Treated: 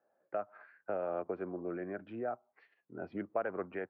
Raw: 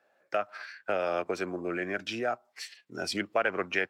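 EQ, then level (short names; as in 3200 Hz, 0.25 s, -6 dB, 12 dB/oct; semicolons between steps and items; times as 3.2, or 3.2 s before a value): HPF 74 Hz; LPF 1100 Hz 12 dB/oct; air absorption 340 m; -4.5 dB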